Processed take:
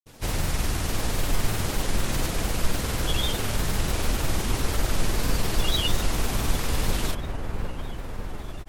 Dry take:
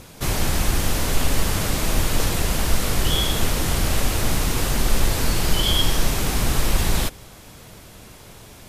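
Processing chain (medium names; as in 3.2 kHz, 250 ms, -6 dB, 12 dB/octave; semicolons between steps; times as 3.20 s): feedback echo behind a low-pass 688 ms, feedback 69%, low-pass 1.7 kHz, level -7 dB; granulator, grains 20 per s, pitch spread up and down by 3 st; trim -4 dB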